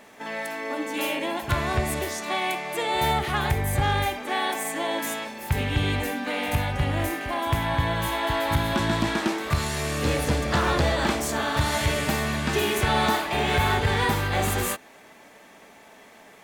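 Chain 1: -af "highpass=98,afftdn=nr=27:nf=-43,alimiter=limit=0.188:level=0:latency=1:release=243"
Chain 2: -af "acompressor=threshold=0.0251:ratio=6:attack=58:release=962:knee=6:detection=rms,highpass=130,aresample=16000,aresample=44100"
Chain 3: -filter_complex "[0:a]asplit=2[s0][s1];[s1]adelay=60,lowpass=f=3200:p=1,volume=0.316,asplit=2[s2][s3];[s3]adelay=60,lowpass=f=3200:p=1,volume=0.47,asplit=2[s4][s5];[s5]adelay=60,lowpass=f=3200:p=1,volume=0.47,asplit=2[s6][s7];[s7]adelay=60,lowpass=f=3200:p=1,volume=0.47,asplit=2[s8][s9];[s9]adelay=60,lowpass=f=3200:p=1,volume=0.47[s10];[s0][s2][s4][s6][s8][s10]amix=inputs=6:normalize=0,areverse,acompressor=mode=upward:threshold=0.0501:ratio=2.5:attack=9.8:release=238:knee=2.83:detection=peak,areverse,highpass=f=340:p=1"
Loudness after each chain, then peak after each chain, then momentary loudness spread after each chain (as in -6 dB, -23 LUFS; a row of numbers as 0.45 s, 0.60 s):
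-27.0 LUFS, -36.0 LUFS, -26.5 LUFS; -14.5 dBFS, -19.5 dBFS, -11.0 dBFS; 4 LU, 5 LU, 7 LU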